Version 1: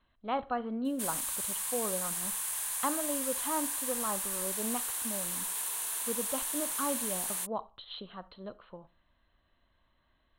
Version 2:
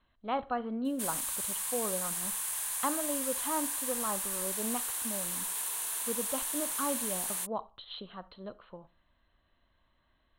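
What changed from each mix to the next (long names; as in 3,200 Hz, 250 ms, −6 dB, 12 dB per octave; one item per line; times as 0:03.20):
nothing changed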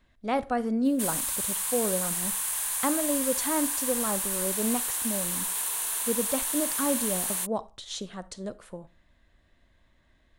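speech: remove Chebyshev low-pass with heavy ripple 4,200 Hz, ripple 9 dB
background +5.0 dB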